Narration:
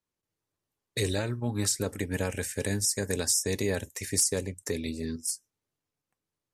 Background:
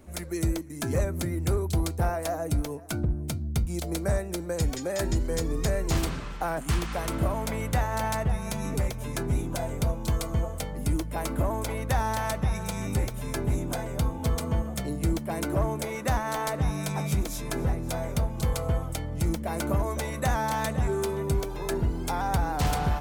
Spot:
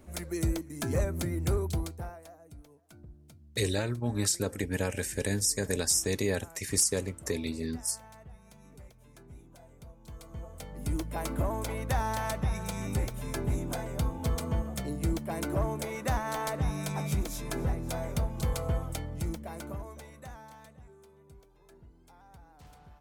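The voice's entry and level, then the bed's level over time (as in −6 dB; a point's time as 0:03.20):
2.60 s, −0.5 dB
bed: 0:01.66 −2.5 dB
0:02.38 −23.5 dB
0:09.91 −23.5 dB
0:11.01 −3.5 dB
0:18.98 −3.5 dB
0:20.97 −28.5 dB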